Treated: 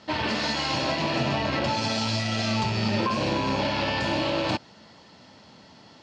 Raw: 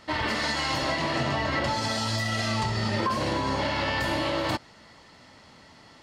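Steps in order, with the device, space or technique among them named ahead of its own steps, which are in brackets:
car door speaker with a rattle (loose part that buzzes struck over −42 dBFS, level −24 dBFS; loudspeaker in its box 88–6,600 Hz, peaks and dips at 200 Hz +4 dB, 1,200 Hz −5 dB, 2,000 Hz −7 dB)
level +2 dB

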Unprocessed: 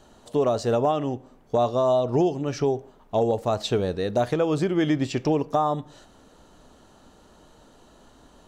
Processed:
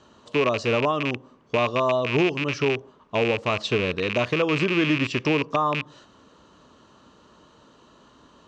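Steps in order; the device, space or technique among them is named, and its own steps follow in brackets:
car door speaker with a rattle (loose part that buzzes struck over −32 dBFS, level −17 dBFS; loudspeaker in its box 84–6,500 Hz, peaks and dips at 750 Hz −8 dB, 1,100 Hz +8 dB, 2,800 Hz +4 dB)

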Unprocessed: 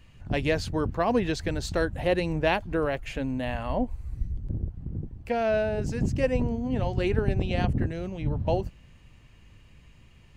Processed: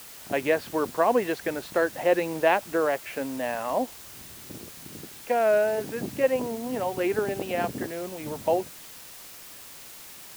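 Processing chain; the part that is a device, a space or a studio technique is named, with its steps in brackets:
wax cylinder (band-pass filter 380–2,100 Hz; tape wow and flutter; white noise bed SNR 17 dB)
level +4.5 dB

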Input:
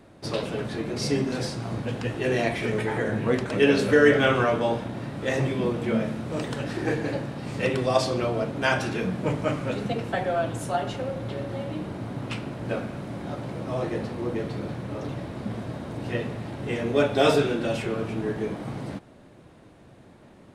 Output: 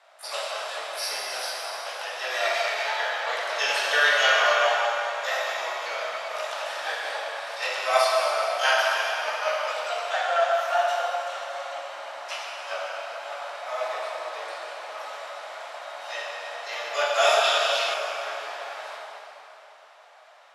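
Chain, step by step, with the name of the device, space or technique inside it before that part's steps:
Chebyshev band-pass filter 630–5,900 Hz, order 4
shimmer-style reverb (pitch-shifted copies added +12 semitones −7 dB; convolution reverb RT60 3.2 s, pre-delay 6 ms, DRR −3.5 dB)
0:17.44–0:17.94: parametric band 3,800 Hz +7.5 dB 0.98 octaves

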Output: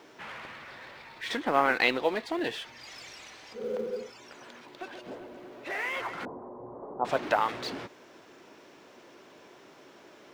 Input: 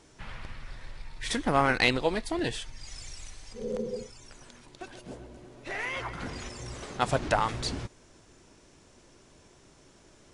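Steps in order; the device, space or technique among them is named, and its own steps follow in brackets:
phone line with mismatched companding (band-pass filter 310–3,400 Hz; mu-law and A-law mismatch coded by mu)
0:06.25–0:07.05: elliptic low-pass filter 1,000 Hz, stop band 80 dB

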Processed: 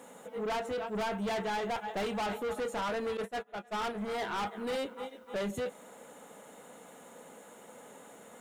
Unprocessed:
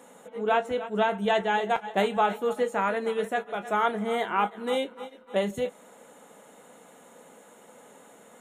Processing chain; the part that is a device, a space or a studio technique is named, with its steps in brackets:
open-reel tape (soft clipping −31 dBFS, distortion −6 dB; parametric band 79 Hz +4.5 dB 0.95 octaves; white noise bed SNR 39 dB)
0:03.17–0:04.18: noise gate −35 dBFS, range −19 dB

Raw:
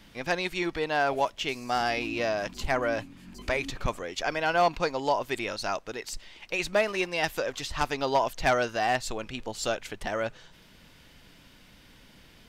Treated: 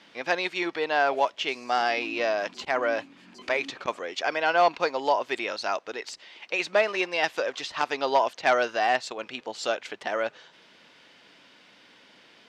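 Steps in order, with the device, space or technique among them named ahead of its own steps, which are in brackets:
public-address speaker with an overloaded transformer (saturating transformer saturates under 83 Hz; band-pass filter 350–5,100 Hz)
level +3 dB

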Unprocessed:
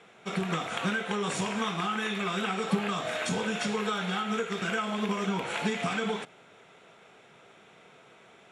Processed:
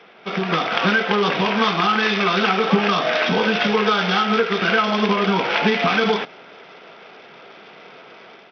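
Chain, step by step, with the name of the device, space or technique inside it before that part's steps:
Bluetooth headset (high-pass filter 210 Hz 12 dB per octave; automatic gain control gain up to 5 dB; downsampling to 8,000 Hz; level +8 dB; SBC 64 kbit/s 44,100 Hz)

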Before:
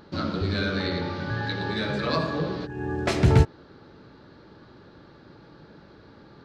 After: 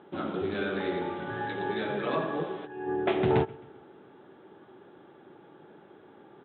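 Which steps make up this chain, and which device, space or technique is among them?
Butterworth low-pass 3,400 Hz 96 dB per octave
0:02.43–0:02.87: low-shelf EQ 420 Hz −8 dB
repeating echo 133 ms, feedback 48%, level −22 dB
full-range speaker at full volume (highs frequency-modulated by the lows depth 0.29 ms; loudspeaker in its box 180–6,800 Hz, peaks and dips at 380 Hz +9 dB, 780 Hz +9 dB, 3,800 Hz +9 dB)
level −5.5 dB

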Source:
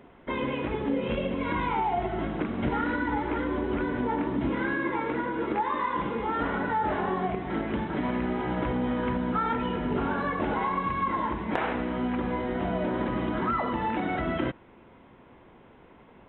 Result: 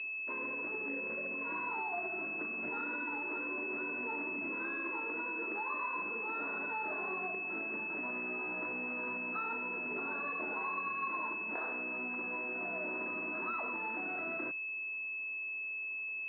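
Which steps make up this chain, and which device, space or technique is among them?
toy sound module (linearly interpolated sample-rate reduction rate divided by 8×; switching amplifier with a slow clock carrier 2,600 Hz; loudspeaker in its box 520–3,600 Hz, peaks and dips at 530 Hz −8 dB, 810 Hz −9 dB, 1,600 Hz +3 dB)
level −4.5 dB

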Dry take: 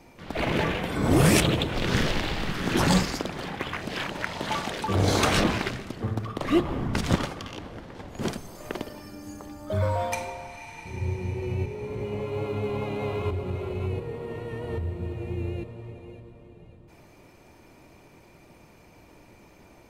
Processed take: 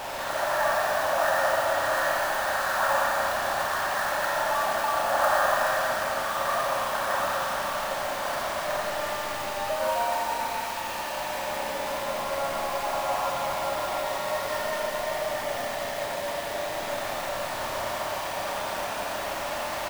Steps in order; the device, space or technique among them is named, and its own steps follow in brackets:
brick-wall band-pass 530–1,900 Hz
0:14.30–0:15.49: comb filter 6.8 ms, depth 59%
single-tap delay 157 ms −22 dB
early CD player with a faulty converter (converter with a step at zero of −28 dBFS; converter with an unsteady clock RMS 0.02 ms)
four-comb reverb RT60 3.1 s, combs from 28 ms, DRR −3 dB
level −2 dB

